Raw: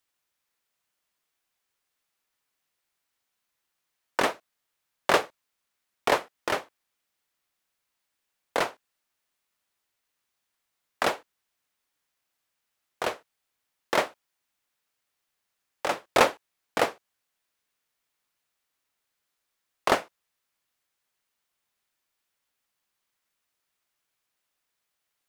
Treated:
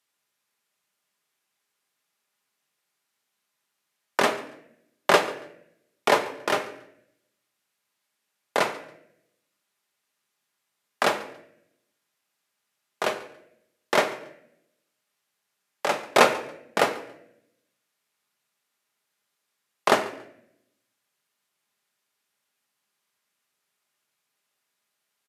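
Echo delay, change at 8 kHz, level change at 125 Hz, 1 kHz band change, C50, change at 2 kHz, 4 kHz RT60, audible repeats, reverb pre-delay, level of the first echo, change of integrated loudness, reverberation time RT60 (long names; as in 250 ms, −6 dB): 140 ms, +3.0 dB, +2.5 dB, +3.0 dB, 11.5 dB, +3.5 dB, 0.60 s, 2, 5 ms, −20.0 dB, +3.0 dB, 0.75 s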